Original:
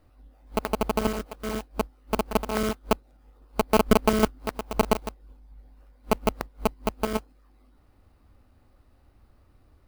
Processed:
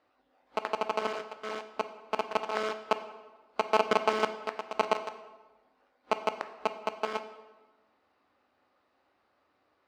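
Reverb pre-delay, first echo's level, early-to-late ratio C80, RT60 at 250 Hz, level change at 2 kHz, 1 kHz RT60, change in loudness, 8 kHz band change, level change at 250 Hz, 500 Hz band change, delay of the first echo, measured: 9 ms, none, 13.5 dB, 1.3 s, -1.5 dB, 1.2 s, -5.0 dB, -12.0 dB, -15.5 dB, -5.0 dB, none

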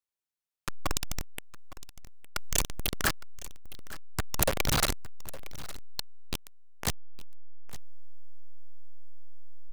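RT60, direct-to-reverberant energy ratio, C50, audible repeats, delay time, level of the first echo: none, none, none, 1, 0.861 s, -17.5 dB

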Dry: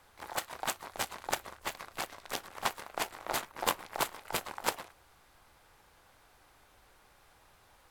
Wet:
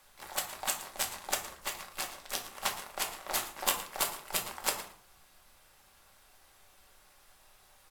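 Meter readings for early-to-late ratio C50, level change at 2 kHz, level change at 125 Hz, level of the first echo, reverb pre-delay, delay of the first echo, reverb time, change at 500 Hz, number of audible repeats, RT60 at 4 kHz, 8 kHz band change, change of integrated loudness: 10.0 dB, -0.5 dB, -3.0 dB, -16.5 dB, 4 ms, 0.113 s, 0.50 s, -2.5 dB, 1, 0.35 s, +5.5 dB, +2.0 dB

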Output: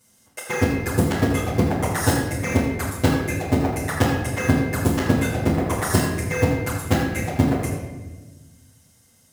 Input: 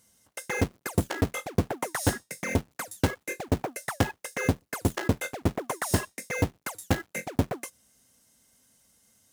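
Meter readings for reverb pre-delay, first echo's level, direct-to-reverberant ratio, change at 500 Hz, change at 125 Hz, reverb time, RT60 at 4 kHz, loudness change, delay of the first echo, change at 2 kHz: 8 ms, none, -9.5 dB, +8.0 dB, +9.0 dB, 1.2 s, 0.85 s, +8.0 dB, none, +6.5 dB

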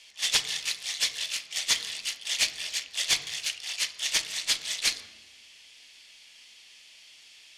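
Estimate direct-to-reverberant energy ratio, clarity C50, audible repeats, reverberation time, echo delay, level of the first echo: 10.0 dB, 12.5 dB, none, 1.1 s, none, none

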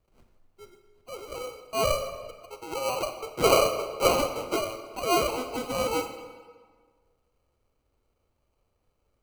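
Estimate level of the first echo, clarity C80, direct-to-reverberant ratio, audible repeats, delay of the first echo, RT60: none, 10.0 dB, 7.5 dB, none, none, 1.6 s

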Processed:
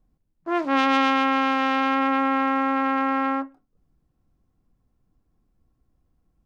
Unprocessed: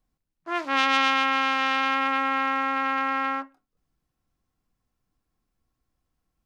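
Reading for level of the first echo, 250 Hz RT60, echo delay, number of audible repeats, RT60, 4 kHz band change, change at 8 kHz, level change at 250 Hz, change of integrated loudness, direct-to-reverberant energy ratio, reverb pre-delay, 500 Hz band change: none, none, none, none, none, -3.5 dB, n/a, +9.5 dB, +1.5 dB, none, none, +6.5 dB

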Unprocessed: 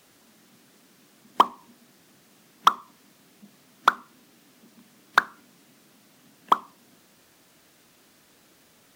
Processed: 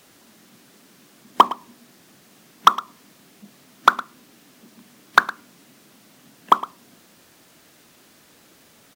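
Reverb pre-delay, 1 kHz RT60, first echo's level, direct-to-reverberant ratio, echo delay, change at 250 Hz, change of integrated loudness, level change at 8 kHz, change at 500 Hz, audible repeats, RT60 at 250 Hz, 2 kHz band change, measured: none, none, -16.5 dB, none, 0.111 s, +5.0 dB, +4.5 dB, +5.0 dB, +5.0 dB, 1, none, +5.0 dB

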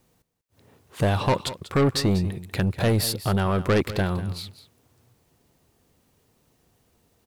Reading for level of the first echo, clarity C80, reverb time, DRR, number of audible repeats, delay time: -14.5 dB, none, none, none, 1, 0.192 s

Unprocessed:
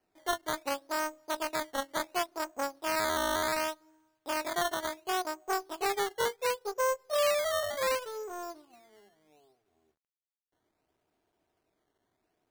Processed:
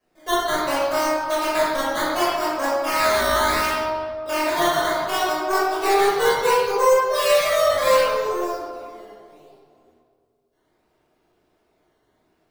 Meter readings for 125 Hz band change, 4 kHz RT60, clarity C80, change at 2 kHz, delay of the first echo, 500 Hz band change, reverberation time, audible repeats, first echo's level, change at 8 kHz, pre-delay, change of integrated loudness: +13.5 dB, 1.1 s, 1.0 dB, +11.0 dB, none, +13.0 dB, 2.1 s, none, none, +8.0 dB, 5 ms, +12.0 dB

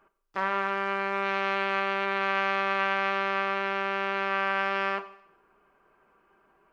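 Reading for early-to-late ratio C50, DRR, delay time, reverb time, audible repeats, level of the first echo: 14.0 dB, 11.0 dB, none, 0.70 s, none, none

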